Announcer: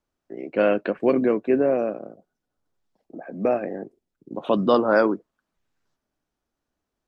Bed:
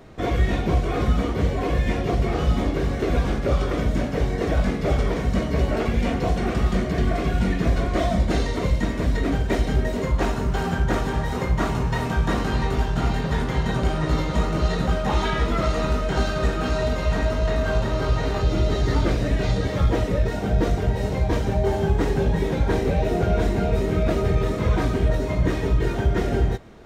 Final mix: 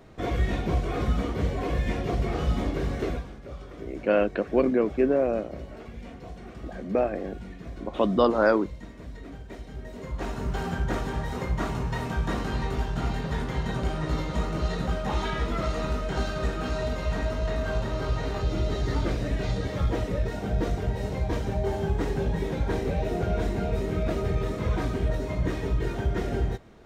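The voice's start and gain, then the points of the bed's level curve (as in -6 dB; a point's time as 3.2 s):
3.50 s, -2.5 dB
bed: 3.07 s -5 dB
3.29 s -19 dB
9.7 s -19 dB
10.47 s -6 dB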